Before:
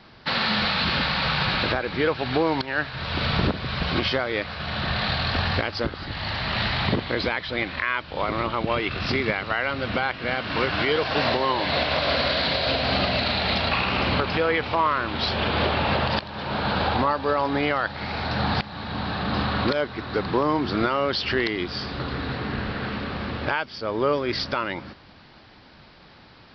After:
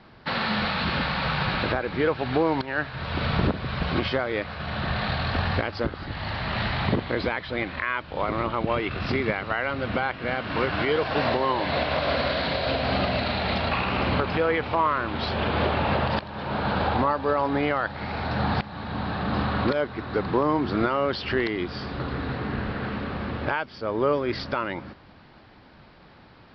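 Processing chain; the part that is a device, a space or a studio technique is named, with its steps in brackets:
through cloth (high-shelf EQ 3,600 Hz −13 dB)

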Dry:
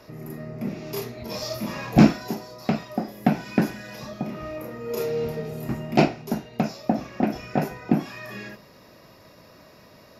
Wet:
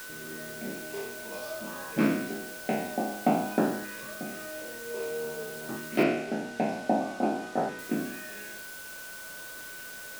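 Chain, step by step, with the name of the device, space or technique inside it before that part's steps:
peak hold with a decay on every bin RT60 0.79 s
shortwave radio (band-pass filter 330–2,500 Hz; amplitude tremolo 0.3 Hz, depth 44%; auto-filter notch saw up 0.52 Hz 700–2,500 Hz; steady tone 1,500 Hz −41 dBFS; white noise bed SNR 13 dB)
0:06.03–0:07.79: high-frequency loss of the air 60 metres
level −2 dB

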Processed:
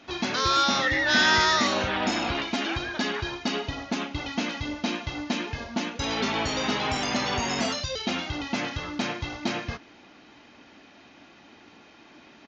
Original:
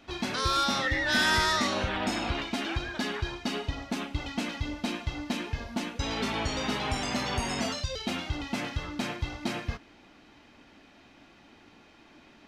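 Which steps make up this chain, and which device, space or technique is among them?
Bluetooth headset (high-pass filter 150 Hz 6 dB per octave; downsampling to 16,000 Hz; level +4.5 dB; SBC 64 kbit/s 16,000 Hz)

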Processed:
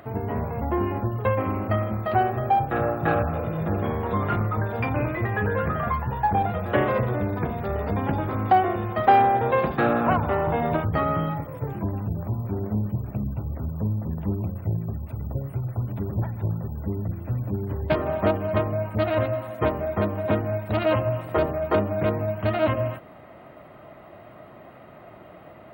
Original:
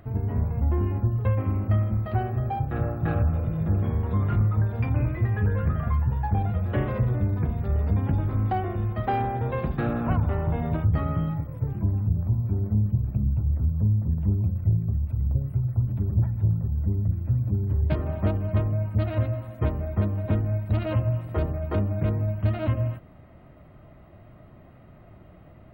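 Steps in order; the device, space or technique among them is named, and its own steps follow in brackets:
filter by subtraction (in parallel: low-pass filter 680 Hz 12 dB per octave + polarity inversion)
on the sum: level +8.5 dB

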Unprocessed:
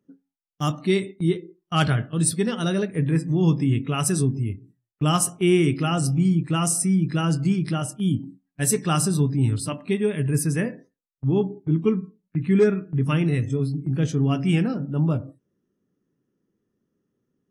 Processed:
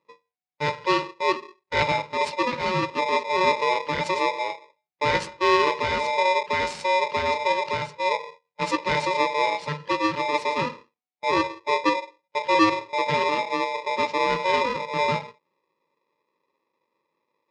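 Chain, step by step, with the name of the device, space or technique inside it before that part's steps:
ring modulator pedal into a guitar cabinet (ring modulator with a square carrier 740 Hz; loudspeaker in its box 77–4,600 Hz, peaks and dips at 160 Hz +10 dB, 650 Hz −7 dB, 1,400 Hz −4 dB, 3,400 Hz −5 dB)

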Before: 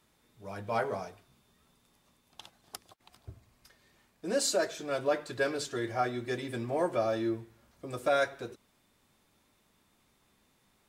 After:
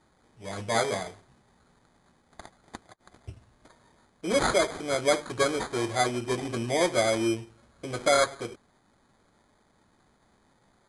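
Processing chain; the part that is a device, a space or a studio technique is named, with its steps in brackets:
crushed at another speed (tape speed factor 2×; decimation without filtering 8×; tape speed factor 0.5×)
level +5 dB

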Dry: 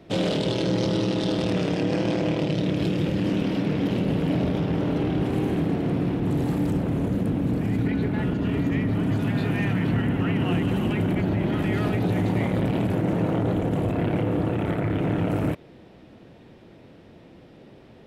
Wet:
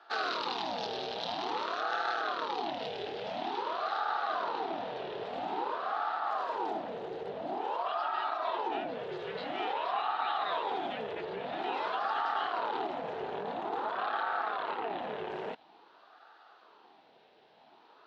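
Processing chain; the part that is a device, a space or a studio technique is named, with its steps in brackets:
voice changer toy (ring modulator whose carrier an LFO sweeps 640 Hz, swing 60%, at 0.49 Hz; loudspeaker in its box 490–4,900 Hz, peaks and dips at 560 Hz −10 dB, 1,100 Hz −6 dB, 2,200 Hz −5 dB, 3,900 Hz +4 dB)
0:07.95–0:08.57: comb filter 3.1 ms, depth 55%
level −2.5 dB

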